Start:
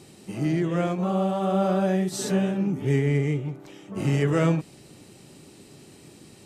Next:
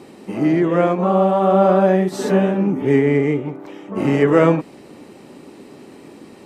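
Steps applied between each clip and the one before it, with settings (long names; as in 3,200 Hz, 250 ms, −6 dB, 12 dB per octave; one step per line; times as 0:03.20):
octave-band graphic EQ 125/250/500/1,000/2,000/8,000 Hz −4/+10/+8/+10/+6/−4 dB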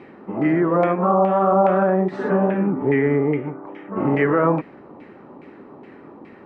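brickwall limiter −8 dBFS, peak gain reduction 6 dB
auto-filter low-pass saw down 2.4 Hz 900–2,200 Hz
level −2.5 dB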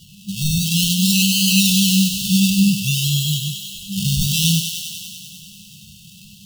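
sample-and-hold swept by an LFO 17×, swing 60% 0.55 Hz
brick-wall band-stop 210–2,600 Hz
feedback echo with a high-pass in the loop 98 ms, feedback 78%, high-pass 570 Hz, level −6 dB
level +7 dB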